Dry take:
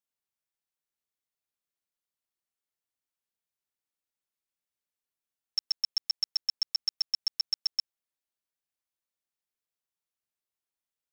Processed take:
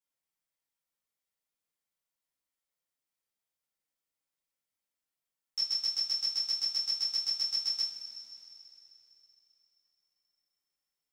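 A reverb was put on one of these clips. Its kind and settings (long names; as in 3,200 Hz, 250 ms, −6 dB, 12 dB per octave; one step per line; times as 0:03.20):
coupled-rooms reverb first 0.32 s, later 3.4 s, from −18 dB, DRR −9 dB
level −8 dB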